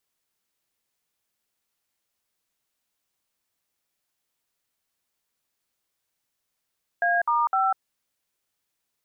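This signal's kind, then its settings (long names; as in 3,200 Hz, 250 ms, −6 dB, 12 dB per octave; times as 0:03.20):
touch tones "A*5", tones 197 ms, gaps 58 ms, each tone −22 dBFS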